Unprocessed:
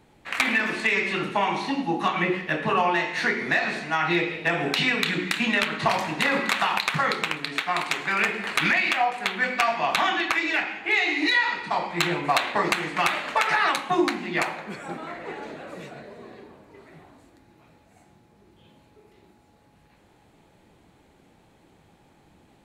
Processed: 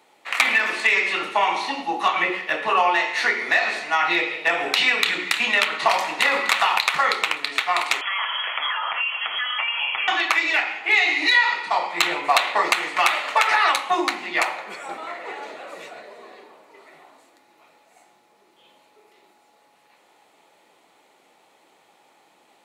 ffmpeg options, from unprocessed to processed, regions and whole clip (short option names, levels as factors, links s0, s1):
-filter_complex "[0:a]asettb=1/sr,asplit=3[s0][s1][s2];[s0]atrim=end=8.014[s3];[s1]atrim=start=8.01:end=10.08,asetpts=PTS-STARTPTS,afade=t=in:d=0.004:c=qsin,afade=t=out:st=2.066:d=0.004:c=qsin,lowshelf=f=240:g=8,acompressor=threshold=0.0501:ratio=5:attack=3.2:release=140:knee=1:detection=peak,lowpass=f=3000:t=q:w=0.5098,lowpass=f=3000:t=q:w=0.6013,lowpass=f=3000:t=q:w=0.9,lowpass=f=3000:t=q:w=2.563,afreqshift=-3500[s4];[s2]atrim=start=10.076[s5];[s3][s4]acrossfade=d=0.004:c1=hsin:c2=qsin[s6];[s6][s5]acrossfade=d=0.004:c1=qsin:c2=hsin,highpass=580,bandreject=f=1600:w=9.4,volume=1.78"